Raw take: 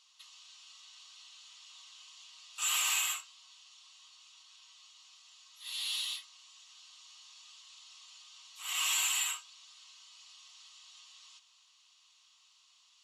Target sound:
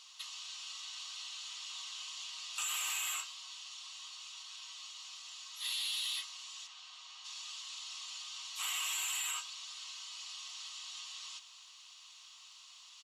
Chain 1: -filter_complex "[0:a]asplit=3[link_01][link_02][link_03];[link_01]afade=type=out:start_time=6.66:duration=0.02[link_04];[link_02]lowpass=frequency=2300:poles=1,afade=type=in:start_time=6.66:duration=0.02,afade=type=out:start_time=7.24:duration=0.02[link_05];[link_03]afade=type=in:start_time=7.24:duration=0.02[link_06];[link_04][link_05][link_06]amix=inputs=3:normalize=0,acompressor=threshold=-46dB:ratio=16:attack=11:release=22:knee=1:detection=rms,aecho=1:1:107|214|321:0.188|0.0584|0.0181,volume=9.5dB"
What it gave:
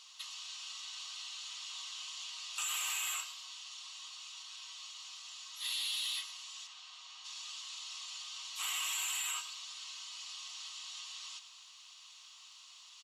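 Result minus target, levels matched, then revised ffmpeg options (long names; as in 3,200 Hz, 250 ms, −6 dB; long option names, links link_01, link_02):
echo-to-direct +11.5 dB
-filter_complex "[0:a]asplit=3[link_01][link_02][link_03];[link_01]afade=type=out:start_time=6.66:duration=0.02[link_04];[link_02]lowpass=frequency=2300:poles=1,afade=type=in:start_time=6.66:duration=0.02,afade=type=out:start_time=7.24:duration=0.02[link_05];[link_03]afade=type=in:start_time=7.24:duration=0.02[link_06];[link_04][link_05][link_06]amix=inputs=3:normalize=0,acompressor=threshold=-46dB:ratio=16:attack=11:release=22:knee=1:detection=rms,aecho=1:1:107|214:0.0501|0.0155,volume=9.5dB"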